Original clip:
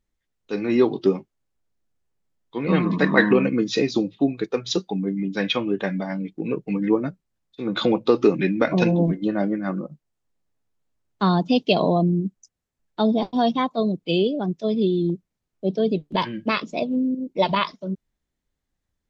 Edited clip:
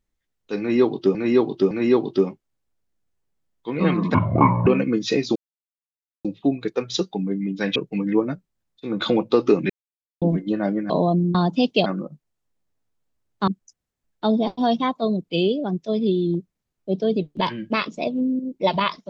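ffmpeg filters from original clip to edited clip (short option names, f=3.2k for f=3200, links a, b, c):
-filter_complex "[0:a]asplit=13[a][b][c][d][e][f][g][h][i][j][k][l][m];[a]atrim=end=1.152[n];[b]atrim=start=0.588:end=1.152[o];[c]atrim=start=0.588:end=3.024[p];[d]atrim=start=3.02:end=3.32,asetpts=PTS-STARTPTS,asetrate=25137,aresample=44100[q];[e]atrim=start=3.316:end=4.01,asetpts=PTS-STARTPTS,afade=t=out:st=0.69:d=0.004:c=hsin,apad=pad_dur=0.89[r];[f]atrim=start=4.01:end=5.522,asetpts=PTS-STARTPTS,afade=t=in:d=0.004:c=hsin[s];[g]atrim=start=6.508:end=8.45,asetpts=PTS-STARTPTS,afade=t=out:st=1.938:d=0.004:c=hsin[t];[h]atrim=start=8.45:end=8.97,asetpts=PTS-STARTPTS,volume=0[u];[i]atrim=start=8.97:end=9.652,asetpts=PTS-STARTPTS,afade=t=in:d=0.004:c=hsin[v];[j]atrim=start=11.778:end=12.232[w];[k]atrim=start=11.268:end=11.782[x];[l]atrim=start=9.648:end=11.272[y];[m]atrim=start=12.228[z];[n][o]acrossfade=d=0.004:c1=hsin:c2=hsin[aa];[aa][p]acrossfade=d=0.004:c1=hsin:c2=hsin[ab];[ab][q]acrossfade=d=0.004:c1=hsin:c2=hsin[ac];[r][s]concat=n=2:v=0:a=1[ad];[ac][ad]acrossfade=d=0.004:c1=hsin:c2=hsin[ae];[t][u][v]concat=n=3:v=0:a=1[af];[ae][af]acrossfade=d=0.004:c1=hsin:c2=hsin[ag];[ag][w]acrossfade=d=0.004:c1=hsin:c2=hsin[ah];[ah][x]acrossfade=d=0.004:c1=hsin:c2=hsin[ai];[ai][y]acrossfade=d=0.004:c1=hsin:c2=hsin[aj];[aj][z]acrossfade=d=0.004:c1=hsin:c2=hsin"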